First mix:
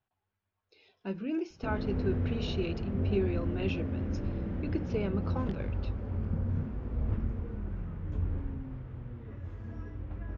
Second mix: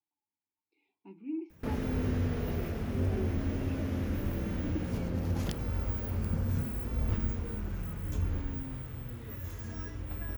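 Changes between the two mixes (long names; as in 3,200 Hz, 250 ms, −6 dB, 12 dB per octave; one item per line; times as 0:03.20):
speech: add formant filter u
background: remove head-to-tape spacing loss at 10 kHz 39 dB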